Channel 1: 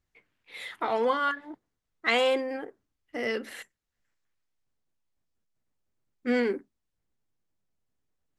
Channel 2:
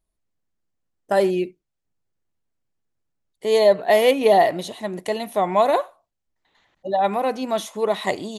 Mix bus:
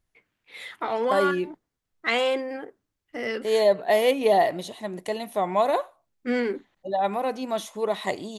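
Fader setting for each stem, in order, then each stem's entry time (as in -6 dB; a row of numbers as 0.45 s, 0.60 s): +0.5 dB, -4.5 dB; 0.00 s, 0.00 s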